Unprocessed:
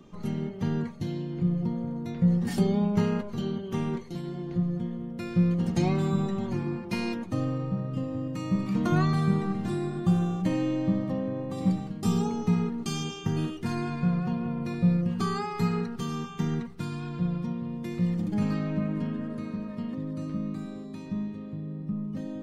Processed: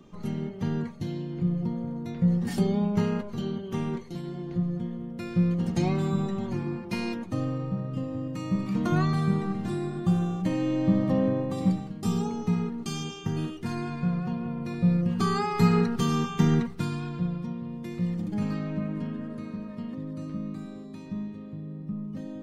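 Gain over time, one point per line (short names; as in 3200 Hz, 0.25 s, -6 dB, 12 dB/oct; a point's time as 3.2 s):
10.56 s -0.5 dB
11.25 s +7 dB
11.86 s -1.5 dB
14.64 s -1.5 dB
15.82 s +7 dB
16.59 s +7 dB
17.36 s -2 dB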